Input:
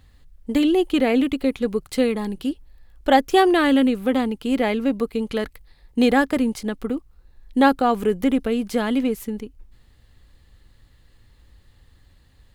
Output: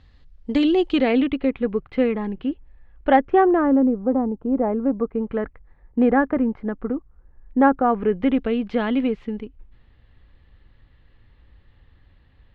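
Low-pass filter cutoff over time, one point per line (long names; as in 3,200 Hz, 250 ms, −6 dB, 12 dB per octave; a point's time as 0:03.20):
low-pass filter 24 dB per octave
0:00.87 5,200 Hz
0:01.55 2,500 Hz
0:03.09 2,500 Hz
0:03.82 1,000 Hz
0:04.49 1,000 Hz
0:05.31 1,700 Hz
0:07.84 1,700 Hz
0:08.29 3,200 Hz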